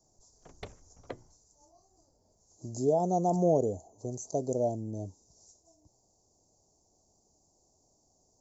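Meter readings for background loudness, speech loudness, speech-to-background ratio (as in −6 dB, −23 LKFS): −49.0 LKFS, −30.5 LKFS, 18.5 dB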